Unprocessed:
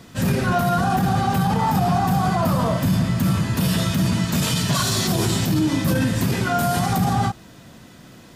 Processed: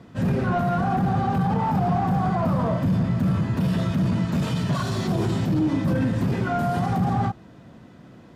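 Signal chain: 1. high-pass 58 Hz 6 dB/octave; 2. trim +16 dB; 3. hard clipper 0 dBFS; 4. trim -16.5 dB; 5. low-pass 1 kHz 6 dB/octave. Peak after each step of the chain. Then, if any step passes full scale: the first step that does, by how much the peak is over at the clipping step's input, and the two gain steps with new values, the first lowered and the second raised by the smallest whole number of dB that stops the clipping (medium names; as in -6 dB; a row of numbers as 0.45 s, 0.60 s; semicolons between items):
-10.0 dBFS, +6.0 dBFS, 0.0 dBFS, -16.5 dBFS, -16.5 dBFS; step 2, 6.0 dB; step 2 +10 dB, step 4 -10.5 dB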